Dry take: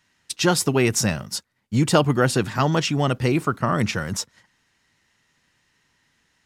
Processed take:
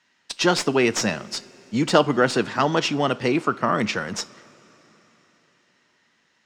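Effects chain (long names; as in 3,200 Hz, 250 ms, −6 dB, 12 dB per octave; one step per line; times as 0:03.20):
stylus tracing distortion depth 0.044 ms
three-way crossover with the lows and the highs turned down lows −18 dB, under 190 Hz, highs −24 dB, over 7,400 Hz
coupled-rooms reverb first 0.31 s, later 4.3 s, from −18 dB, DRR 15 dB
level +1.5 dB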